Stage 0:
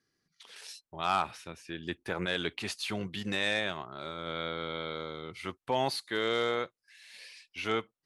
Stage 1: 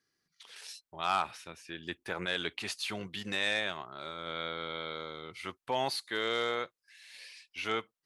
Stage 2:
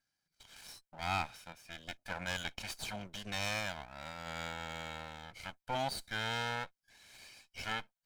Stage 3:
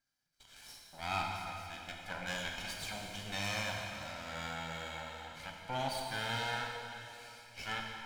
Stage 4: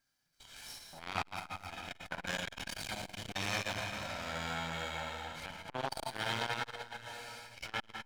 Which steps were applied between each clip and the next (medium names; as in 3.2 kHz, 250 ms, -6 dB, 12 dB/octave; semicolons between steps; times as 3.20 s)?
bass shelf 490 Hz -6.5 dB
comb filter that takes the minimum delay 1.3 ms; trim -3.5 dB
plate-style reverb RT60 2.8 s, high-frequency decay 0.95×, DRR 0 dB; trim -2.5 dB
transformer saturation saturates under 1.5 kHz; trim +5 dB